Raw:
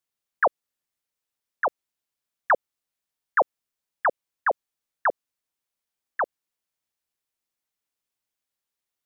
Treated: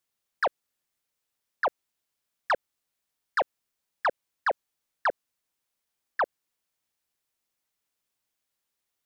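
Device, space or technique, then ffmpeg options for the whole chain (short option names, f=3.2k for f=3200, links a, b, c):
soft clipper into limiter: -af "asoftclip=type=tanh:threshold=-18dB,alimiter=limit=-23.5dB:level=0:latency=1:release=19,volume=3.5dB"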